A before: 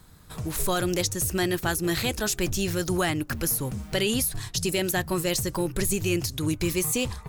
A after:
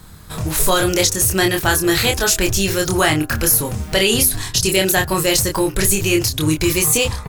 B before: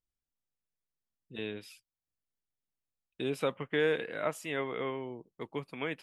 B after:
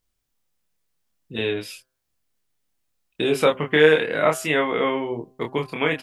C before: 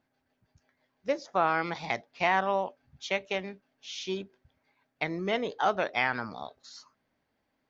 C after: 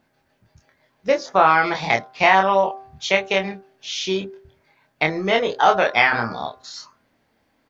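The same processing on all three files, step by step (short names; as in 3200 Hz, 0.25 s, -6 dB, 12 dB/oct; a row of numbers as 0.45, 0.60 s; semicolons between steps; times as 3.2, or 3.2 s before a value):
de-hum 129.3 Hz, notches 13; dynamic EQ 210 Hz, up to -6 dB, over -39 dBFS, Q 0.95; doubler 26 ms -4 dB; normalise peaks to -1.5 dBFS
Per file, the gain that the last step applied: +10.0, +13.0, +10.5 dB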